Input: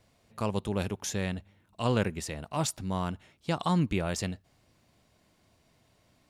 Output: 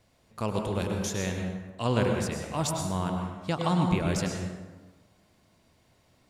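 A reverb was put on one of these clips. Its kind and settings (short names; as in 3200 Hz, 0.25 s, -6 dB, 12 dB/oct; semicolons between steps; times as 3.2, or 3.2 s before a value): plate-style reverb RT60 1.3 s, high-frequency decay 0.55×, pre-delay 90 ms, DRR 2 dB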